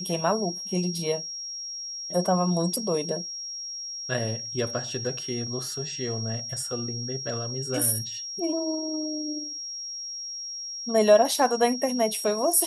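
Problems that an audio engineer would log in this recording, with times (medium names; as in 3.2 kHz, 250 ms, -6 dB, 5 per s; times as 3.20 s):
whine 5.6 kHz -33 dBFS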